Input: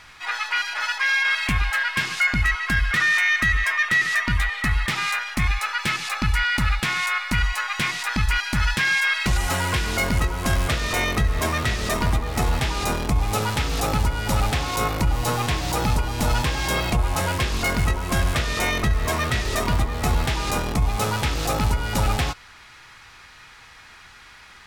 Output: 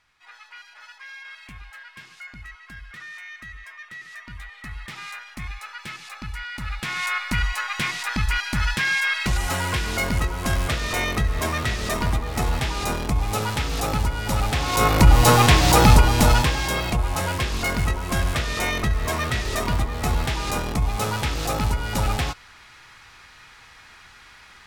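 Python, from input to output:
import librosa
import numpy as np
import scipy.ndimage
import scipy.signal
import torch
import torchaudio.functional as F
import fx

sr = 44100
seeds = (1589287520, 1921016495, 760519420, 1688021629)

y = fx.gain(x, sr, db=fx.line((3.98, -20.0), (5.02, -12.0), (6.54, -12.0), (7.07, -1.5), (14.47, -1.5), (15.09, 9.0), (16.05, 9.0), (16.73, -1.5)))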